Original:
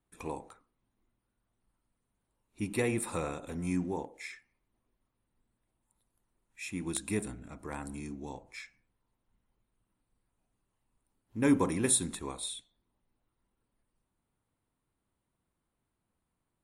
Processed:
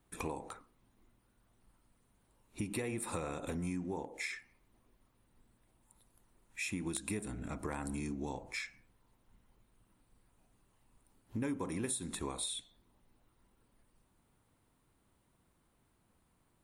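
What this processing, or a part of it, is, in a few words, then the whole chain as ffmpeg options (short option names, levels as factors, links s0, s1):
serial compression, peaks first: -af "acompressor=threshold=0.00891:ratio=5,acompressor=threshold=0.00251:ratio=1.5,volume=2.99"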